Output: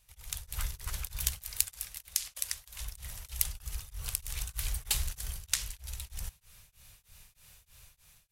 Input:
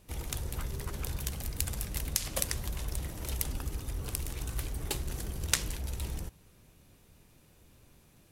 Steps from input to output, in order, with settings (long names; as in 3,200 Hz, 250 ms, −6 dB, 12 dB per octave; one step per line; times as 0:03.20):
0:01.42–0:02.80: low-shelf EQ 260 Hz −11.5 dB
automatic gain control gain up to 12.5 dB
guitar amp tone stack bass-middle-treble 10-0-10
tremolo along a rectified sine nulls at 3.2 Hz
level −1 dB